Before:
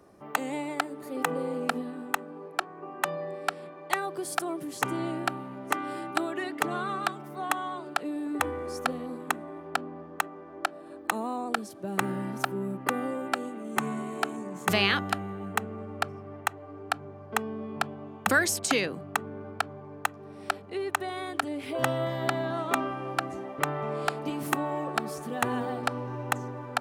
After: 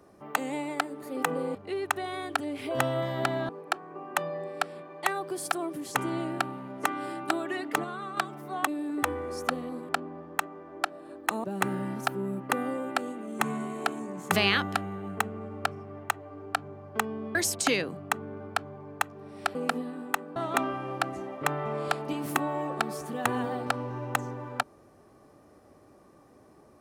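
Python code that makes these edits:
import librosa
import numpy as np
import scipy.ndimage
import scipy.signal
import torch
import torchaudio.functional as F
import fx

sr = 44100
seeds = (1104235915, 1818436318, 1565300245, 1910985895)

y = fx.edit(x, sr, fx.swap(start_s=1.55, length_s=0.81, other_s=20.59, other_length_s=1.94),
    fx.clip_gain(start_s=6.71, length_s=0.33, db=-5.5),
    fx.cut(start_s=7.54, length_s=0.5),
    fx.cut(start_s=9.26, length_s=0.44),
    fx.cut(start_s=11.25, length_s=0.56),
    fx.cut(start_s=17.72, length_s=0.67), tone=tone)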